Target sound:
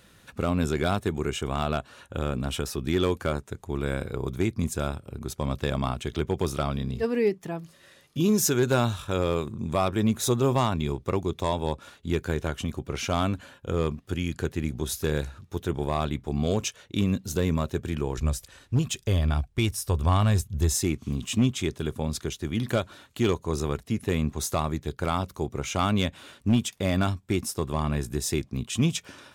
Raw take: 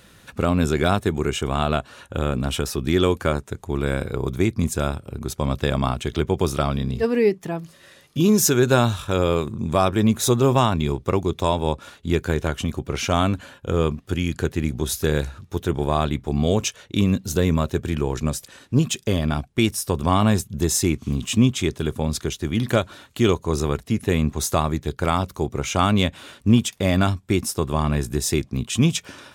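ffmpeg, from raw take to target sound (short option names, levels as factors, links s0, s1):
-filter_complex "[0:a]asplit=3[s0][s1][s2];[s0]afade=t=out:st=18.17:d=0.02[s3];[s1]asubboost=boost=6:cutoff=79,afade=t=in:st=18.17:d=0.02,afade=t=out:st=20.75:d=0.02[s4];[s2]afade=t=in:st=20.75:d=0.02[s5];[s3][s4][s5]amix=inputs=3:normalize=0,volume=2.82,asoftclip=hard,volume=0.355,volume=0.531"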